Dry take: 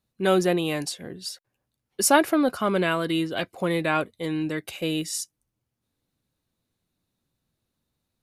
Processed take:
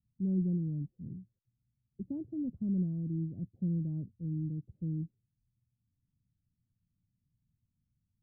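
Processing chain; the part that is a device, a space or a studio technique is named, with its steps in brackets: the neighbour's flat through the wall (low-pass 200 Hz 24 dB/octave; peaking EQ 110 Hz +4.5 dB 0.61 oct)

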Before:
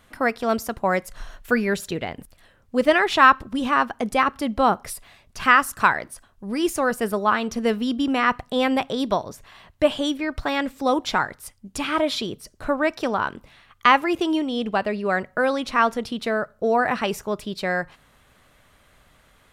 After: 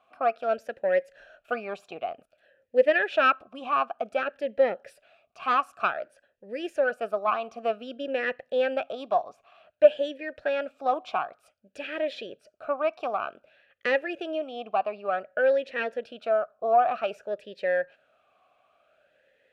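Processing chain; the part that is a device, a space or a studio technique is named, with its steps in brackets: talk box (valve stage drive 7 dB, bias 0.75; talking filter a-e 0.54 Hz); trim +8.5 dB

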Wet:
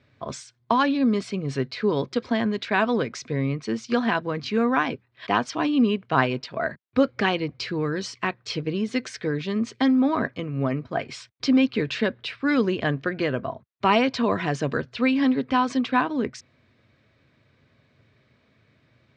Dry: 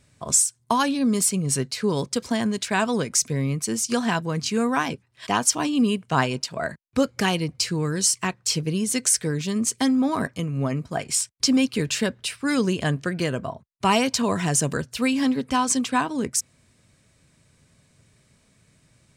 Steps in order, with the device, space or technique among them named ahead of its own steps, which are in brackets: guitar cabinet (cabinet simulation 99–3700 Hz, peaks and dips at 170 Hz -10 dB, 880 Hz -3 dB, 2.9 kHz -4 dB); trim +2 dB

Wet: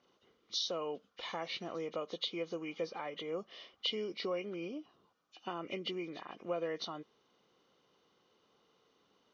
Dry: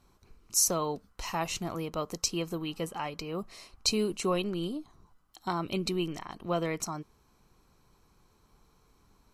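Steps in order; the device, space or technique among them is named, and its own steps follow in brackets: hearing aid with frequency lowering (knee-point frequency compression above 1.5 kHz 1.5:1; compression 3:1, threshold -33 dBFS, peak gain reduction 9 dB; cabinet simulation 270–6100 Hz, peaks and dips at 510 Hz +7 dB, 940 Hz -5 dB, 3.1 kHz +4 dB); trim -3 dB

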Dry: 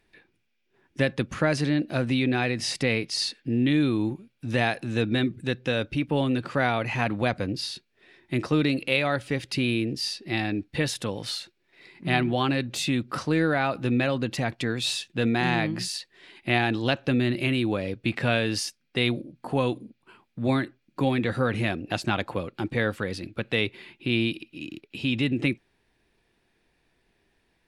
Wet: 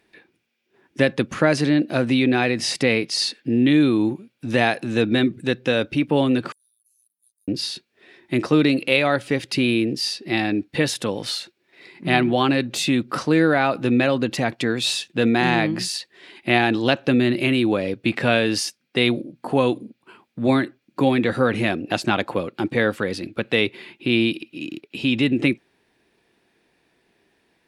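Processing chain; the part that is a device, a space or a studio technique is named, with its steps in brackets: 6.52–7.48 s: inverse Chebyshev high-pass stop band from 2.3 kHz, stop band 80 dB; filter by subtraction (in parallel: low-pass 290 Hz 12 dB/octave + polarity flip); on the sum: trim +5 dB

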